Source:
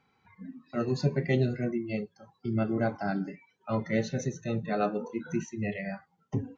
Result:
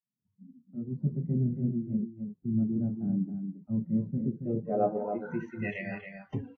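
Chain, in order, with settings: fade-in on the opening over 1.47 s; low-pass sweep 210 Hz -> 3.1 kHz, 4.11–5.86 s; on a send: delay 276 ms -7.5 dB; on the sum: trim -3.5 dB; Vorbis 64 kbps 32 kHz

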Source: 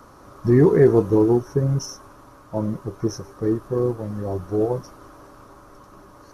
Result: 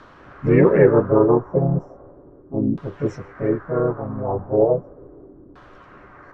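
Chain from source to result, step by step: harmony voices +4 st -3 dB, +7 st -17 dB; LFO low-pass saw down 0.36 Hz 290–3600 Hz; trim -1.5 dB

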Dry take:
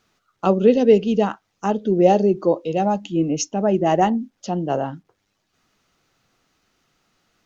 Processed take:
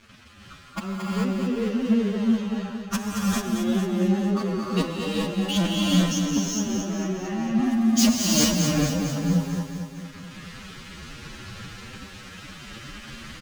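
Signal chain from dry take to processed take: in parallel at -2 dB: compression, threshold -22 dBFS, peak gain reduction 13 dB; on the sum: inverted gate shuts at -12 dBFS, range -37 dB; hard clipper -24 dBFS, distortion -6 dB; FFT filter 110 Hz 0 dB, 230 Hz +1 dB, 320 Hz -6 dB, 650 Hz -15 dB, 1.7 kHz -3 dB, 5.3 kHz 0 dB, 9.3 kHz +5 dB; wavefolder -28 dBFS; level-controlled noise filter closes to 2.2 kHz, open at -42 dBFS; waveshaping leveller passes 5; on a send: feedback delay 125 ms, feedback 59%, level -7 dB; on the sum: level rider gain up to 4.5 dB; peaking EQ 720 Hz -4.5 dB 0.37 oct; gated-style reverb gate 260 ms rising, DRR -4 dB; time stretch by phase-locked vocoder 1.8×; trim +2 dB

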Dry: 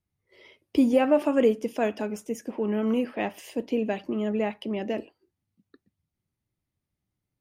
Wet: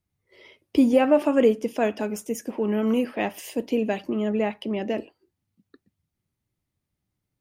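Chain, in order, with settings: 2.02–4.10 s: treble shelf 6.6 kHz +8 dB; trim +2.5 dB

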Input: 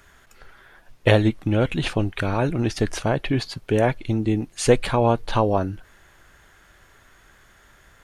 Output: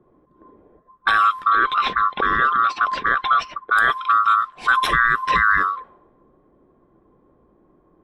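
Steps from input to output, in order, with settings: split-band scrambler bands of 1 kHz; level-controlled noise filter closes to 340 Hz, open at -17.5 dBFS; fifteen-band graphic EQ 100 Hz -9 dB, 630 Hz -6 dB, 6.3 kHz -6 dB; peak limiter -14 dBFS, peak gain reduction 11 dB; 1.50–3.77 s: distance through air 140 m; trim +7 dB

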